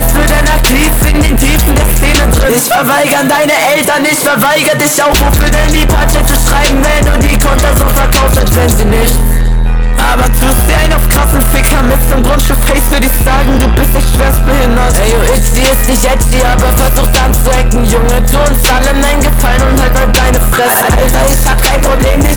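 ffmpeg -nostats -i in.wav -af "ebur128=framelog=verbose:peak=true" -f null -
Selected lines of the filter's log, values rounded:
Integrated loudness:
  I:          -8.7 LUFS
  Threshold: -18.7 LUFS
Loudness range:
  LRA:         1.3 LU
  Threshold: -28.7 LUFS
  LRA low:    -9.2 LUFS
  LRA high:   -7.9 LUFS
True peak:
  Peak:       -0.0 dBFS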